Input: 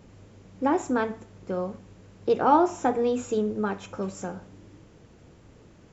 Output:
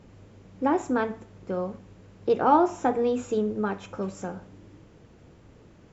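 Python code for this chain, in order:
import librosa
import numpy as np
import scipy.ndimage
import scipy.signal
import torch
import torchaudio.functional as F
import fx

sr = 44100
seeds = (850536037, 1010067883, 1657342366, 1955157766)

y = fx.high_shelf(x, sr, hz=6400.0, db=-7.5)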